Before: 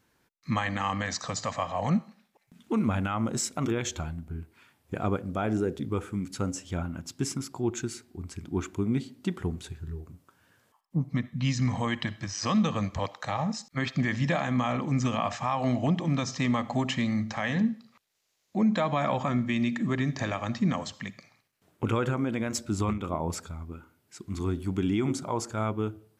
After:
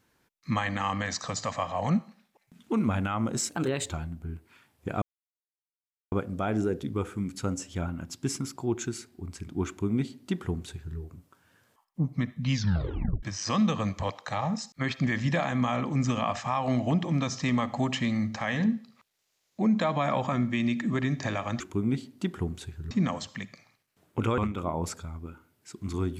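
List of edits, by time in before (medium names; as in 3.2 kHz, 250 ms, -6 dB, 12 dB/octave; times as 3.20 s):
3.49–3.96 s: speed 115%
5.08 s: insert silence 1.10 s
8.63–9.94 s: copy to 20.56 s
11.49 s: tape stop 0.70 s
22.03–22.84 s: delete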